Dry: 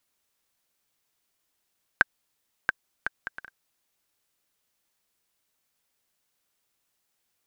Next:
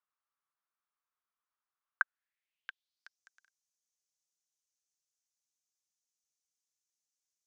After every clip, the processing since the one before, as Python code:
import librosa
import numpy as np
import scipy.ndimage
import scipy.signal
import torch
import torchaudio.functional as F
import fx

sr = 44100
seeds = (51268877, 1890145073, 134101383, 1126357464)

y = fx.filter_sweep_bandpass(x, sr, from_hz=1200.0, to_hz=6300.0, start_s=1.96, end_s=3.23, q=3.8)
y = F.gain(torch.from_numpy(y), -3.5).numpy()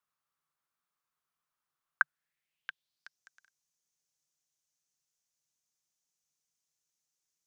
y = fx.peak_eq(x, sr, hz=150.0, db=11.0, octaves=0.42)
y = F.gain(torch.from_numpy(y), 3.5).numpy()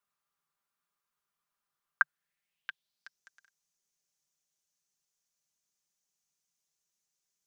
y = x + 0.43 * np.pad(x, (int(5.0 * sr / 1000.0), 0))[:len(x)]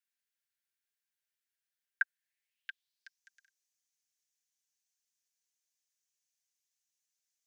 y = scipy.signal.sosfilt(scipy.signal.butter(16, 1500.0, 'highpass', fs=sr, output='sos'), x)
y = F.gain(torch.from_numpy(y), -2.5).numpy()